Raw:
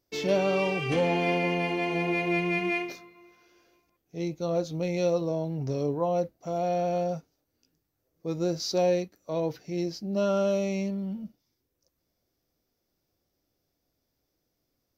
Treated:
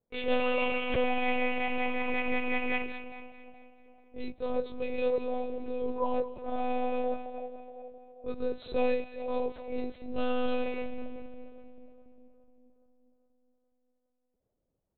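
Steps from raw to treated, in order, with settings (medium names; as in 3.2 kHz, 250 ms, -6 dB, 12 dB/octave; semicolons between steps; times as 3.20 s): level-controlled noise filter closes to 790 Hz, open at -27.5 dBFS; bass shelf 340 Hz -7.5 dB; two-band feedback delay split 850 Hz, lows 414 ms, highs 219 ms, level -11 dB; monotone LPC vocoder at 8 kHz 250 Hz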